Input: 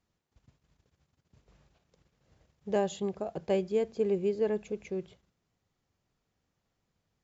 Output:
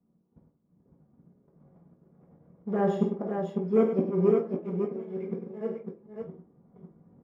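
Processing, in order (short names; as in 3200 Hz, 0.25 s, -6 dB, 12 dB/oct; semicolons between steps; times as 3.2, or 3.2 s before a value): reverse delay 0.63 s, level -10 dB; recorder AGC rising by 5.6 dB/s; low-pass opened by the level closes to 410 Hz, open at -25 dBFS; 2.7–4.91 LPF 1200 Hz 6 dB/oct; sample leveller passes 1; auto swell 0.72 s; flipped gate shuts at -27 dBFS, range -26 dB; tapped delay 50/100/551 ms -10.5/-9/-5 dB; reverb RT60 0.40 s, pre-delay 3 ms, DRR -2 dB; gain +2.5 dB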